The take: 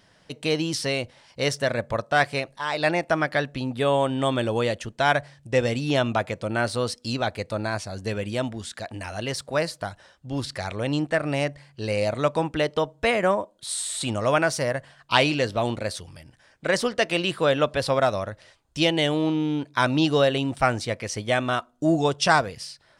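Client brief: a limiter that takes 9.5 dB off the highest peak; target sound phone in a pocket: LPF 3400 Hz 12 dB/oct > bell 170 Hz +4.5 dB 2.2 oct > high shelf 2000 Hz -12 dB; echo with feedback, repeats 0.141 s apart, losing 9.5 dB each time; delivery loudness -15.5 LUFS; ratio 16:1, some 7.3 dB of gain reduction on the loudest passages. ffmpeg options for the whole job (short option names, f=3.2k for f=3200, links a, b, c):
-af "acompressor=threshold=-22dB:ratio=16,alimiter=limit=-17.5dB:level=0:latency=1,lowpass=3.4k,equalizer=f=170:t=o:w=2.2:g=4.5,highshelf=f=2k:g=-12,aecho=1:1:141|282|423|564:0.335|0.111|0.0365|0.012,volume=13dB"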